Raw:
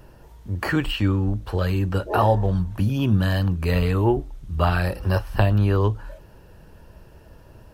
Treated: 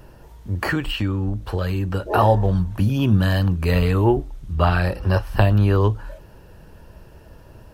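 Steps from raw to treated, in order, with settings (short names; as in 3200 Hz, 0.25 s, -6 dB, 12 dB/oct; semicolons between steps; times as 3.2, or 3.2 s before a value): 0.71–2.06 compressor 2.5:1, threshold -23 dBFS, peak gain reduction 5.5 dB; 4.53–5.23 high shelf 9500 Hz -10.5 dB; gain +2.5 dB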